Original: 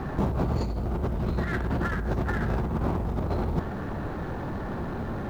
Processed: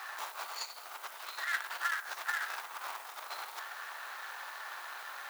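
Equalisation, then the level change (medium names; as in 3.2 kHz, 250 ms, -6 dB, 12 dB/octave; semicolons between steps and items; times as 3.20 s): Bessel high-pass 1.6 kHz, order 4; treble shelf 5.6 kHz +10.5 dB; +3.0 dB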